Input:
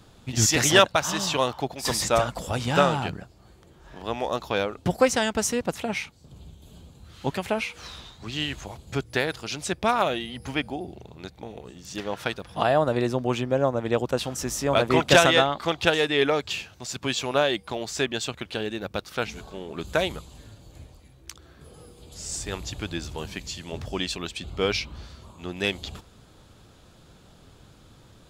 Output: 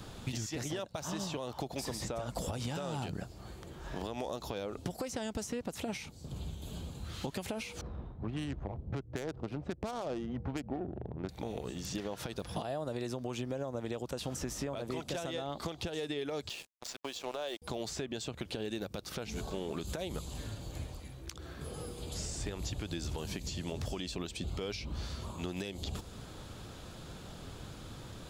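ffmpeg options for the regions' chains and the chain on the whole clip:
ffmpeg -i in.wav -filter_complex "[0:a]asettb=1/sr,asplit=3[link_01][link_02][link_03];[link_01]atrim=end=7.814[link_04];[link_02]atrim=start=7.81:end=11.29,asetpts=PTS-STARTPTS,afade=type=in:duration=0.004:curve=qsin,afade=type=out:start_time=3.476:duration=0.004:curve=qsin,highshelf=frequency=3900:gain=-8.5,adynamicsmooth=sensitivity=1.5:basefreq=530[link_05];[link_03]atrim=start=11.286[link_06];[link_04][link_05]acrossfade=duration=0.004:curve1=hsin:curve2=qsin[link_07];[link_07][link_06]acrossfade=duration=0.004:curve1=qsin:curve2=hsin,asettb=1/sr,asplit=3[link_08][link_09][link_10];[link_08]atrim=end=16.494[link_11];[link_09]atrim=start=16.49:end=17.62,asetpts=PTS-STARTPTS,afade=type=in:duration=0.004:curve=qsin,afade=type=out:start_time=1.126:duration=0.004:curve=qsin,highpass=540,lowpass=6700,aeval=exprs='sgn(val(0))*max(abs(val(0))-0.00841,0)':channel_layout=same,agate=range=-40dB:threshold=-52dB:ratio=16:release=100:detection=peak[link_12];[link_10]atrim=start=17.616[link_13];[link_11][link_12]acrossfade=duration=0.004:curve1=hsin:curve2=qsin[link_14];[link_14][link_13]acrossfade=duration=0.004:curve1=qsin:curve2=hsin,acompressor=threshold=-29dB:ratio=6,alimiter=level_in=1.5dB:limit=-24dB:level=0:latency=1:release=115,volume=-1.5dB,acrossover=split=740|4000[link_15][link_16][link_17];[link_15]acompressor=threshold=-41dB:ratio=4[link_18];[link_16]acompressor=threshold=-55dB:ratio=4[link_19];[link_17]acompressor=threshold=-51dB:ratio=4[link_20];[link_18][link_19][link_20]amix=inputs=3:normalize=0,volume=5.5dB" out.wav

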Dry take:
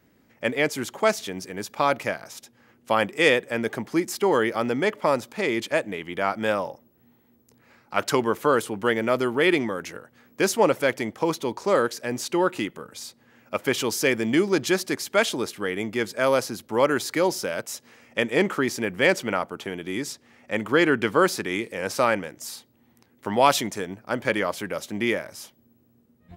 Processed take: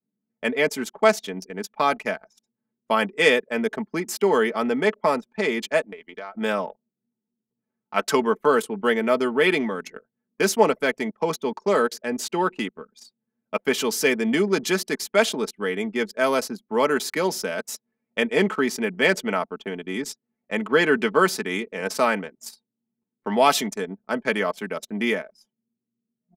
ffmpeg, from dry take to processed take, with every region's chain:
ffmpeg -i in.wav -filter_complex "[0:a]asettb=1/sr,asplit=3[link_01][link_02][link_03];[link_01]atrim=end=5.864[link_04];[link_02]atrim=start=5.86:end=6.35,asetpts=PTS-STARTPTS,afade=type=in:duration=0.004:curve=qsin,afade=type=out:start_time=0.486:duration=0.004:curve=qsin,highpass=frequency=410:poles=1,acompressor=threshold=-32dB:ratio=4:attack=3.2:release=140:knee=1:detection=peak,asoftclip=type=hard:threshold=-24dB[link_05];[link_03]atrim=start=6.346[link_06];[link_04][link_05]acrossfade=duration=0.004:curve1=hsin:curve2=qsin[link_07];[link_07][link_06]acrossfade=duration=0.004:curve1=qsin:curve2=hsin,highpass=frequency=150:width=0.5412,highpass=frequency=150:width=1.3066,anlmdn=6.31,aecho=1:1:4.6:0.57" out.wav

